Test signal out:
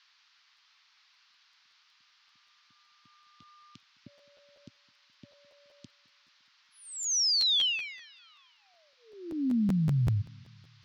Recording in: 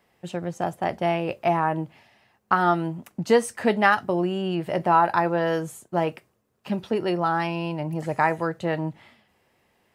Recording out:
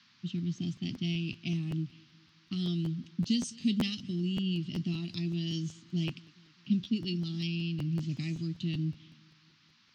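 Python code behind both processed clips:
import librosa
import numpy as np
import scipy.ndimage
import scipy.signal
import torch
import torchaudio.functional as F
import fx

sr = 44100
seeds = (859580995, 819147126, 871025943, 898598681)

p1 = fx.env_lowpass(x, sr, base_hz=1800.0, full_db=-17.5)
p2 = scipy.signal.sosfilt(scipy.signal.ellip(3, 1.0, 40, [260.0, 3100.0], 'bandstop', fs=sr, output='sos'), p1)
p3 = fx.dmg_noise_band(p2, sr, seeds[0], low_hz=1000.0, high_hz=4800.0, level_db=-69.0)
p4 = fx.high_shelf(p3, sr, hz=3900.0, db=7.5)
p5 = fx.rider(p4, sr, range_db=4, speed_s=0.5)
p6 = p4 + (p5 * librosa.db_to_amplitude(-0.5))
p7 = scipy.signal.sosfilt(scipy.signal.ellip(3, 1.0, 40, [110.0, 6100.0], 'bandpass', fs=sr, output='sos'), p6)
p8 = p7 + fx.echo_feedback(p7, sr, ms=211, feedback_pct=55, wet_db=-24, dry=0)
p9 = fx.buffer_crackle(p8, sr, first_s=0.37, period_s=0.19, block=512, kind='repeat')
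y = p9 * librosa.db_to_amplitude(-5.5)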